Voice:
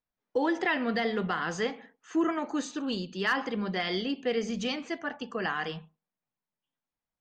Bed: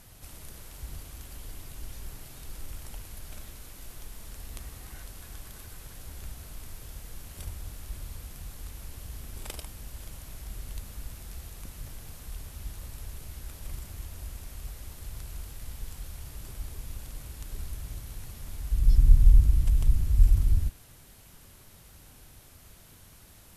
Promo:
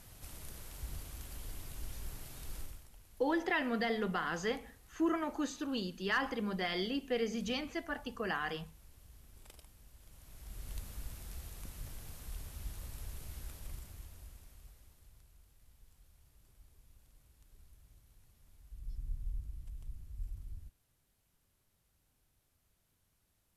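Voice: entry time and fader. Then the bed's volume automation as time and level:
2.85 s, -5.0 dB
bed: 2.6 s -3 dB
2.89 s -17 dB
10.01 s -17 dB
10.73 s -4.5 dB
13.43 s -4.5 dB
15.36 s -23.5 dB

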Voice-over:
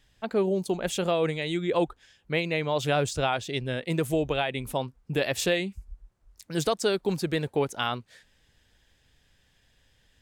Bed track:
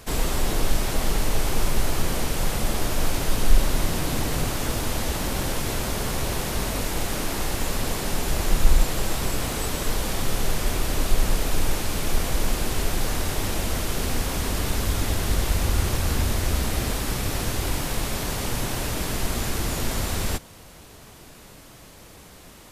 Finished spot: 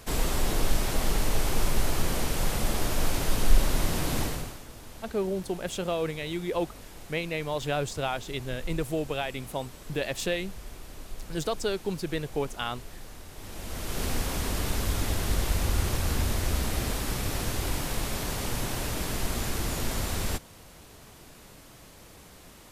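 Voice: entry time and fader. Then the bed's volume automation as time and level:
4.80 s, -4.0 dB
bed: 4.23 s -3 dB
4.65 s -19.5 dB
13.3 s -19.5 dB
14.03 s -4 dB

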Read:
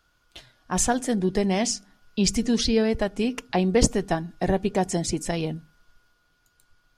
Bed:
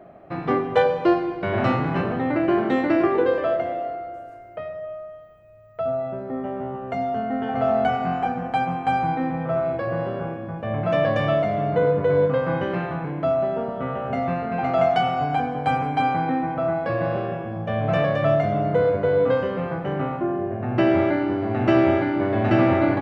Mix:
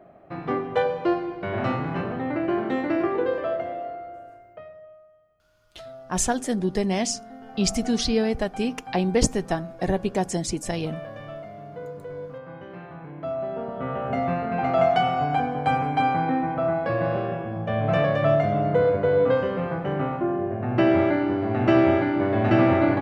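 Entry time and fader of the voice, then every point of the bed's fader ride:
5.40 s, -1.0 dB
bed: 4.3 s -4.5 dB
5.08 s -17 dB
12.54 s -17 dB
14 s -0.5 dB

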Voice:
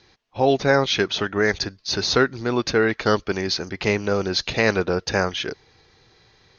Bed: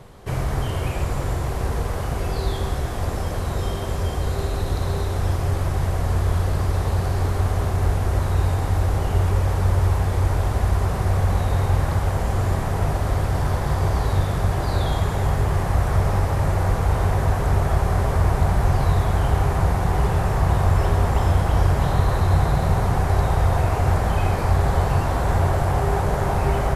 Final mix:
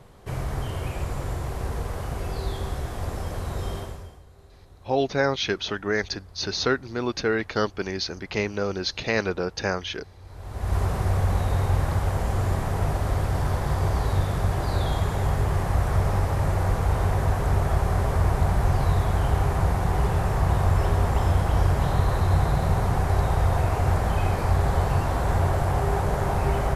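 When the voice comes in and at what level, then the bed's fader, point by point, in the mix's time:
4.50 s, -5.0 dB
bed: 3.79 s -5.5 dB
4.26 s -27.5 dB
10.2 s -27.5 dB
10.76 s -3 dB

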